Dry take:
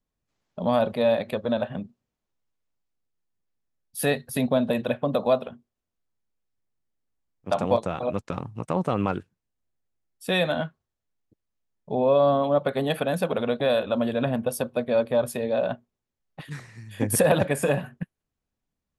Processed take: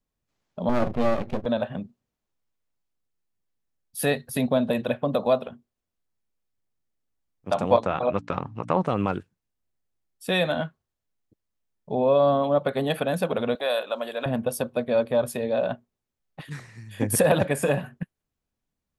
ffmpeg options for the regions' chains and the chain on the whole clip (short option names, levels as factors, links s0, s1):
-filter_complex "[0:a]asettb=1/sr,asplit=3[s0][s1][s2];[s0]atrim=end=0.694[s3];[s1]atrim=start=0.69:end=1.46,asetpts=PTS-STARTPTS,afade=t=in:d=0.004:c=qsin,afade=t=out:st=0.766:d=0.004:c=qsin,aemphasis=mode=reproduction:type=riaa,aeval=exprs='max(val(0),0)':c=same[s4];[s2]atrim=start=1.456[s5];[s3][s4]acrossfade=d=0.004:c1=hsin:c2=qsin[s6];[s6][s5]acrossfade=d=0.004:c1=qsin:c2=hsin,asettb=1/sr,asplit=3[s7][s8][s9];[s7]atrim=end=7.724[s10];[s8]atrim=start=7.72:end=8.87,asetpts=PTS-STARTPTS,afade=t=in:d=0.004:c=qsin,afade=t=out:st=1.146:d=0.004:c=qsin,lowpass=5200,equalizer=f=1300:w=0.47:g=6,bandreject=f=57.45:t=h:w=4,bandreject=f=114.9:t=h:w=4,bandreject=f=172.35:t=h:w=4,bandreject=f=229.8:t=h:w=4,bandreject=f=287.25:t=h:w=4[s11];[s9]atrim=start=8.866[s12];[s10][s11]acrossfade=d=0.004:c1=hsin:c2=qsin[s13];[s13][s12]acrossfade=d=0.004:c1=qsin:c2=hsin,asettb=1/sr,asplit=3[s14][s15][s16];[s14]atrim=end=13.554[s17];[s15]atrim=start=13.55:end=14.26,asetpts=PTS-STARTPTS,afade=t=in:d=0.004:c=qsin,afade=t=out:st=0.706:d=0.004:c=qsin,highpass=580,highshelf=f=10000:g=11.5[s18];[s16]atrim=start=14.256[s19];[s17][s18]acrossfade=d=0.004:c1=hsin:c2=qsin[s20];[s20][s19]acrossfade=d=0.004:c1=qsin:c2=hsin"